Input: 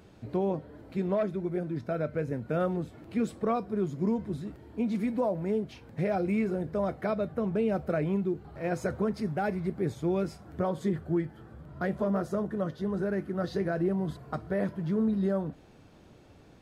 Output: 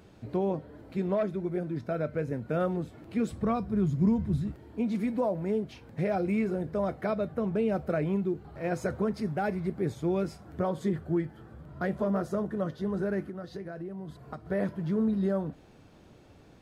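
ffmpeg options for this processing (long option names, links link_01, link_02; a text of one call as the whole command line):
ffmpeg -i in.wav -filter_complex "[0:a]asplit=3[link_01][link_02][link_03];[link_01]afade=type=out:start_time=3.3:duration=0.02[link_04];[link_02]asubboost=boost=6:cutoff=160,afade=type=in:start_time=3.3:duration=0.02,afade=type=out:start_time=4.51:duration=0.02[link_05];[link_03]afade=type=in:start_time=4.51:duration=0.02[link_06];[link_04][link_05][link_06]amix=inputs=3:normalize=0,asettb=1/sr,asplit=3[link_07][link_08][link_09];[link_07]atrim=end=13.284[link_10];[link_08]atrim=start=13.28:end=14.46,asetpts=PTS-STARTPTS,afade=type=in:duration=0.004:curve=qsin,afade=type=out:start_time=1.176:duration=0.004:curve=qsin,acompressor=threshold=-38dB:ratio=4[link_11];[link_09]atrim=start=14.456[link_12];[link_10][link_11]acrossfade=duration=0.004:curve1=hsin:curve2=qsin[link_13];[link_13][link_12]acrossfade=duration=0.004:curve1=qsin:curve2=hsin" out.wav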